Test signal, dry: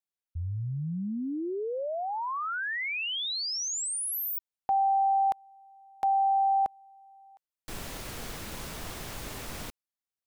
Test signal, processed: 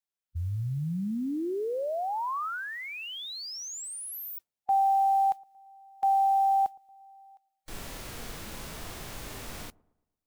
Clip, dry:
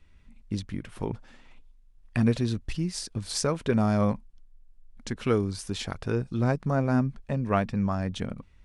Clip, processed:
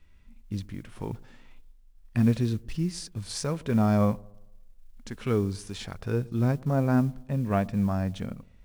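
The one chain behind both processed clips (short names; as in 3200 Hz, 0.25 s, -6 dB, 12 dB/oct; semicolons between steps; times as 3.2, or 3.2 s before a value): modulation noise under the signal 30 dB; harmonic-percussive split percussive -8 dB; dark delay 0.114 s, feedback 44%, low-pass 910 Hz, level -22.5 dB; gain +1.5 dB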